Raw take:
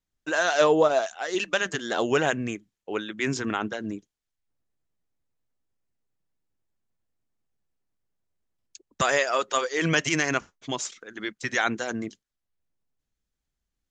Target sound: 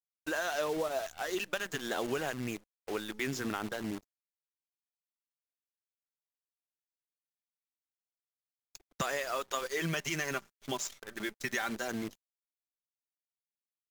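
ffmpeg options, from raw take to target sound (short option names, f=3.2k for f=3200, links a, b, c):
-filter_complex "[0:a]asettb=1/sr,asplit=3[a][b][c];[a]atrim=end=9.654[d];[b]atrim=start=9.65:end=11.88,asetpts=PTS-STARTPTS,afade=t=in:d=0.004:c=qsin,afade=t=out:st=2.226:d=0.004:c=qsin,aecho=1:1:5.1:0.51,atrim=end_sample=98343[e];[c]atrim=start=11.876[f];[d][e]acrossfade=d=0.004:c1=hsin:c2=qsin[g];[g][f]acrossfade=d=0.004:c1=qsin:c2=hsin,acompressor=threshold=-26dB:ratio=6,acrusher=bits=7:dc=4:mix=0:aa=0.000001,volume=-4.5dB" -ar 48000 -c:a libvorbis -b:a 128k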